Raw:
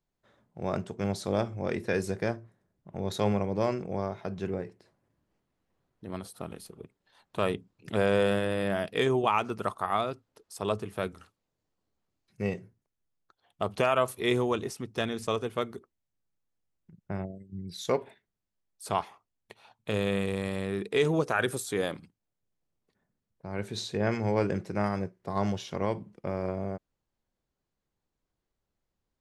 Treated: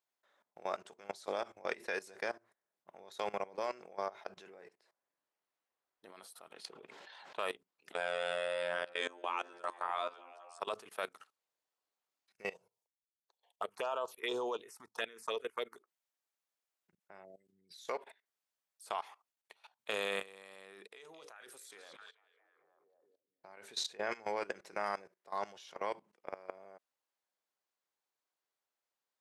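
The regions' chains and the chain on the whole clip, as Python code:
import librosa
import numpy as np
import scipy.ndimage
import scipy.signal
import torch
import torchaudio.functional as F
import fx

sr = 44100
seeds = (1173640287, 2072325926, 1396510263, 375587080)

y = fx.chain(x, sr, fx.lowpass(hz=4400.0, slope=12),
    fx.notch(hz=1200.0, q=13.0),
    fx.env_flatten(amount_pct=70), at=(6.53, 7.39))
y = fx.chain(y, sr, fx.steep_lowpass(hz=9500.0, slope=72),
    fx.robotise(hz=87.7),
    fx.echo_stepped(ms=189, hz=310.0, octaves=0.7, feedback_pct=70, wet_db=-6.0), at=(7.93, 10.6))
y = fx.chain(y, sr, fx.env_phaser(low_hz=230.0, high_hz=2100.0, full_db=-22.5),
    fx.small_body(hz=(460.0, 930.0), ring_ms=25, db=7), at=(12.53, 15.76))
y = fx.chain(y, sr, fx.hum_notches(base_hz=60, count=9),
    fx.level_steps(step_db=22),
    fx.echo_stepped(ms=218, hz=3900.0, octaves=-0.7, feedback_pct=70, wet_db=-3.5), at=(20.87, 23.57))
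y = scipy.signal.sosfilt(scipy.signal.butter(2, 700.0, 'highpass', fs=sr, output='sos'), y)
y = fx.level_steps(y, sr, step_db=19)
y = F.gain(torch.from_numpy(y), 2.0).numpy()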